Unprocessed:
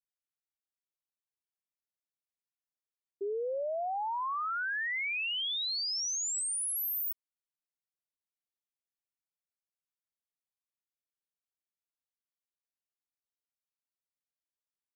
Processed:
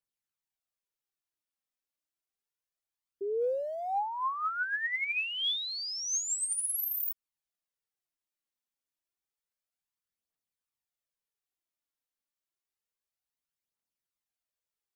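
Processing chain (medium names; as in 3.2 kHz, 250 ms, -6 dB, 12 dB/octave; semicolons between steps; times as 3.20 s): 3.41–4.00 s: jump at every zero crossing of -58.5 dBFS; phaser 0.29 Hz, delay 4 ms, feedback 46%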